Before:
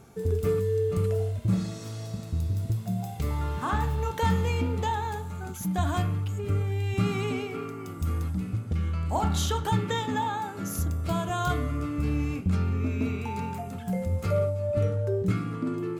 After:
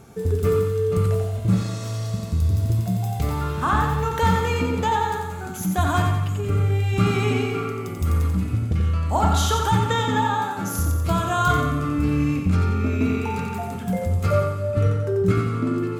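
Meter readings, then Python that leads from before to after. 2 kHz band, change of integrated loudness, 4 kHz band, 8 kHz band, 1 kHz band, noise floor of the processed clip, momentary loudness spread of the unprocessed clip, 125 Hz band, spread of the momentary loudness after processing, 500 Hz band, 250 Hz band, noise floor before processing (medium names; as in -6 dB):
+8.5 dB, +6.5 dB, +6.5 dB, +6.5 dB, +8.0 dB, -30 dBFS, 7 LU, +6.5 dB, 6 LU, +5.5 dB, +6.0 dB, -38 dBFS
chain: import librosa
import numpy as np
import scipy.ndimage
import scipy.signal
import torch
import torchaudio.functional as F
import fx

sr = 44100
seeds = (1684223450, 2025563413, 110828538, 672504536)

p1 = fx.dynamic_eq(x, sr, hz=1300.0, q=2.2, threshold_db=-45.0, ratio=4.0, max_db=5)
p2 = fx.rider(p1, sr, range_db=10, speed_s=2.0)
p3 = p1 + (p2 * librosa.db_to_amplitude(-2.5))
y = fx.echo_feedback(p3, sr, ms=89, feedback_pct=50, wet_db=-5)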